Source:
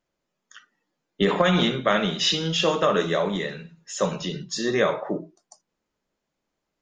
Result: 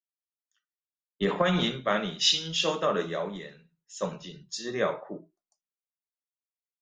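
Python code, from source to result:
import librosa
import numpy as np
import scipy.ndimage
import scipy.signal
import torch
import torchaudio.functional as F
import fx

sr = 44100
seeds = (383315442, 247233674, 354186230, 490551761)

y = fx.band_widen(x, sr, depth_pct=100)
y = F.gain(torch.from_numpy(y), -7.5).numpy()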